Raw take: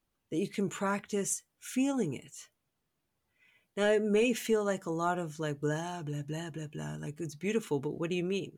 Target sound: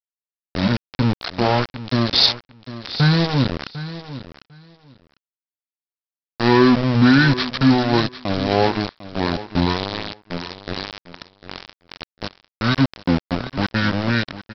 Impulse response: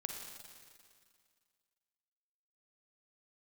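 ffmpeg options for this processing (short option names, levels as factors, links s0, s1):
-af "highpass=f=140:w=0.5412,highpass=f=140:w=1.3066,highshelf=f=3600:g=8,asetrate=26019,aresample=44100,aresample=11025,aeval=exprs='val(0)*gte(abs(val(0)),0.0316)':c=same,aresample=44100,acontrast=76,aecho=1:1:750|1500:0.188|0.0301,volume=2.11"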